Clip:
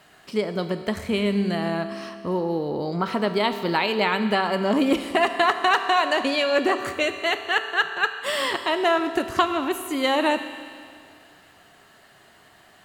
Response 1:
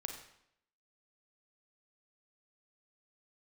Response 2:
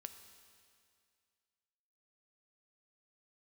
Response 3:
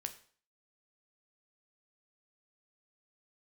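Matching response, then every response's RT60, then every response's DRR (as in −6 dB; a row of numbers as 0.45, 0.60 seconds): 2; 0.75, 2.2, 0.45 seconds; 3.5, 8.0, 6.5 decibels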